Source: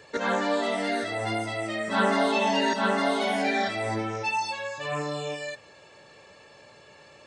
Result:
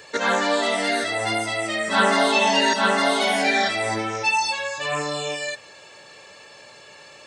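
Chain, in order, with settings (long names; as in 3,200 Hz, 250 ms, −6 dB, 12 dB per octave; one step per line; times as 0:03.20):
spectral tilt +2 dB per octave
level +5.5 dB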